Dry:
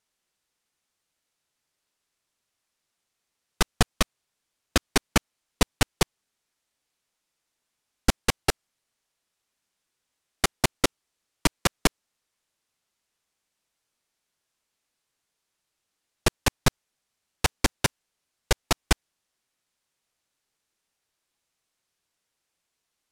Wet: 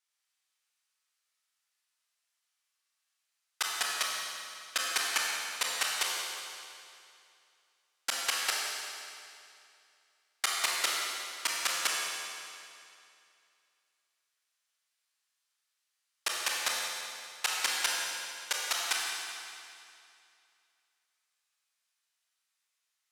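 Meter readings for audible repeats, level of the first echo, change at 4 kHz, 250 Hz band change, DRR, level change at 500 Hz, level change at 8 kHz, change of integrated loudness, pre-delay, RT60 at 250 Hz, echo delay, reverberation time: no echo, no echo, -0.5 dB, -27.0 dB, -3.5 dB, -14.5 dB, -1.0 dB, -4.5 dB, 26 ms, 2.5 s, no echo, 2.5 s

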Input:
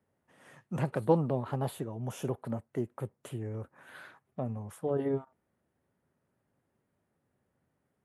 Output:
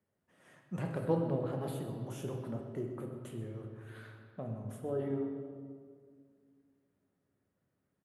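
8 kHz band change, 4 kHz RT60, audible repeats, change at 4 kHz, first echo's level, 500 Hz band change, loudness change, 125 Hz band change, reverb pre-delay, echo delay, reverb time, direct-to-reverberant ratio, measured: -5.0 dB, 1.4 s, 1, -4.0 dB, -13.5 dB, -4.0 dB, -4.5 dB, -3.5 dB, 5 ms, 127 ms, 2.0 s, 2.0 dB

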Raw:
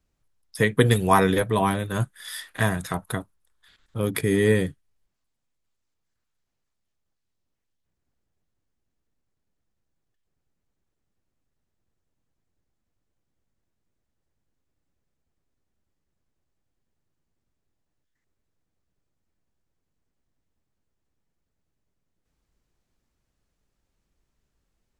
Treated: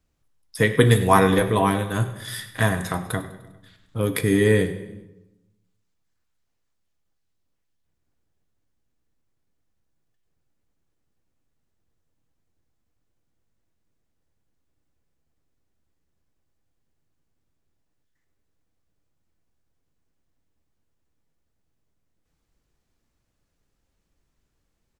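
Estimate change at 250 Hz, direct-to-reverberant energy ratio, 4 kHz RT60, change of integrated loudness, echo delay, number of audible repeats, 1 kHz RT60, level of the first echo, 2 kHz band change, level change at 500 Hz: +2.5 dB, 8.0 dB, 0.80 s, +2.5 dB, 100 ms, 4, 0.90 s, -17.0 dB, +2.0 dB, +2.5 dB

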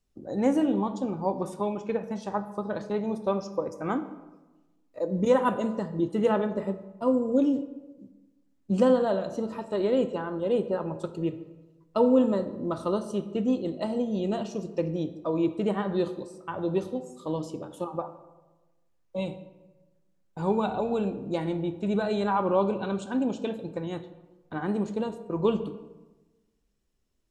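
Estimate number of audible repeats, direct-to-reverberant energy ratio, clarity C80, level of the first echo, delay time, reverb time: no echo, 10.0 dB, 14.5 dB, no echo, no echo, 1.2 s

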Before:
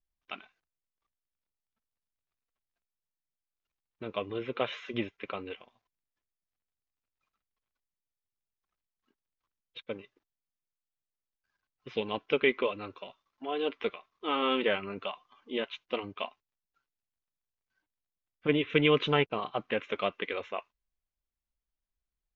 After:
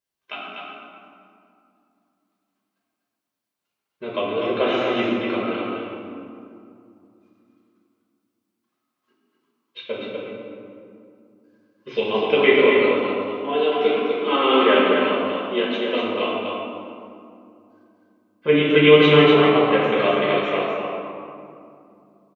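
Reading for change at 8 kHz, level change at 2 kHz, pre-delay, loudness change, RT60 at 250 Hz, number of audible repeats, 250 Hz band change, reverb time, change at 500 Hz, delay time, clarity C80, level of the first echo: no reading, +12.5 dB, 5 ms, +13.0 dB, 3.8 s, 1, +14.0 dB, 2.6 s, +14.5 dB, 246 ms, -2.0 dB, -4.5 dB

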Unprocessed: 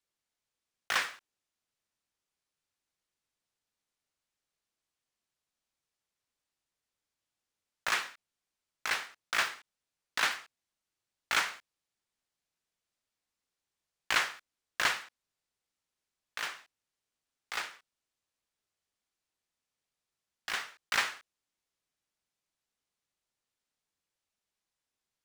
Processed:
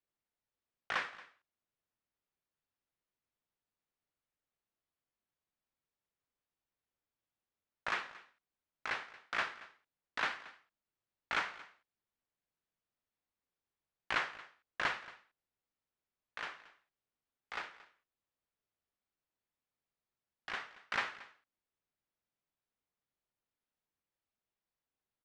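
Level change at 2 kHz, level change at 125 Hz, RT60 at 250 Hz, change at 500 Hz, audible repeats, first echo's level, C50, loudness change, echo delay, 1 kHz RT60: -5.5 dB, -1.5 dB, no reverb, -2.5 dB, 1, -19.0 dB, no reverb, -6.5 dB, 228 ms, no reverb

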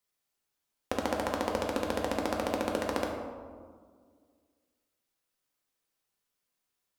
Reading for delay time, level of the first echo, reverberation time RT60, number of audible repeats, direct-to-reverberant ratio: no echo, no echo, 1.9 s, no echo, 0.0 dB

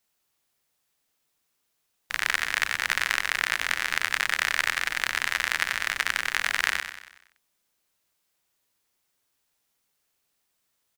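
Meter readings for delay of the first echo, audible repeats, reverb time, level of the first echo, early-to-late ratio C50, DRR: 94 ms, 5, no reverb, -9.0 dB, no reverb, no reverb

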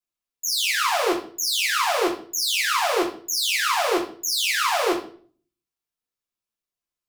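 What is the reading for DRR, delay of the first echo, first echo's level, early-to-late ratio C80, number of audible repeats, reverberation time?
-6.0 dB, no echo, no echo, 12.0 dB, no echo, 0.45 s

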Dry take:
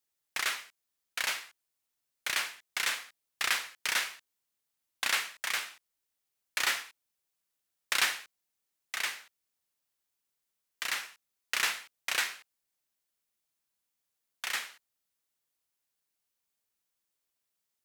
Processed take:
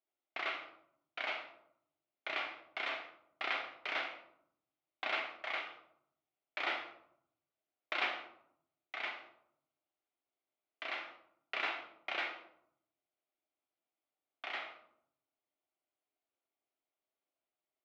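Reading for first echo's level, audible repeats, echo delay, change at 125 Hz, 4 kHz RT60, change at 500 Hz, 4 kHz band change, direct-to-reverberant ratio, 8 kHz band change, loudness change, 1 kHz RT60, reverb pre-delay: no echo, no echo, no echo, no reading, 0.40 s, +4.0 dB, -10.0 dB, 2.5 dB, under -30 dB, -7.5 dB, 0.70 s, 3 ms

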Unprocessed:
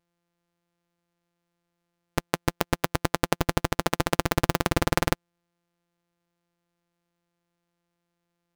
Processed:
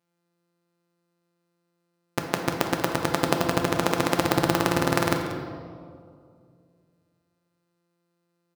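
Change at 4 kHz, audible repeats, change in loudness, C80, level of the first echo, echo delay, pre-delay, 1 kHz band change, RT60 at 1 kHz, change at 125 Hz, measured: +1.5 dB, 1, +2.0 dB, 6.0 dB, -14.5 dB, 186 ms, 3 ms, +2.5 dB, 2.0 s, -0.5 dB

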